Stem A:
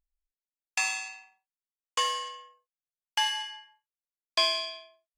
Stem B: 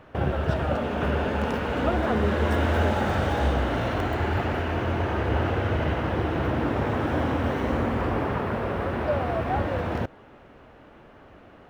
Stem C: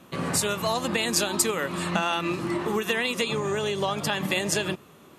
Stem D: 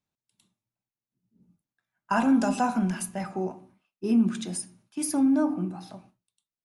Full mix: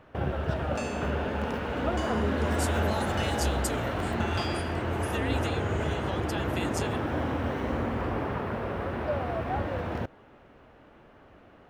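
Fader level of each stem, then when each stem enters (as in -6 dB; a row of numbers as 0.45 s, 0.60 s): -13.5 dB, -4.5 dB, -11.0 dB, -15.0 dB; 0.00 s, 0.00 s, 2.25 s, 0.00 s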